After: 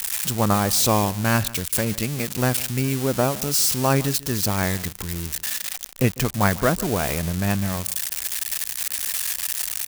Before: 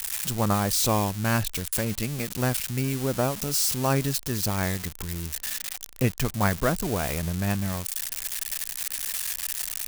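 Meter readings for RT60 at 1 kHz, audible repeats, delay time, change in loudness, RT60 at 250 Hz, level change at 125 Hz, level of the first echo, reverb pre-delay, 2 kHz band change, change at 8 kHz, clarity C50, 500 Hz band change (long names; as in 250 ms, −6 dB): no reverb audible, 1, 150 ms, +4.5 dB, no reverb audible, +3.5 dB, −19.5 dB, no reverb audible, +4.5 dB, +4.5 dB, no reverb audible, +4.5 dB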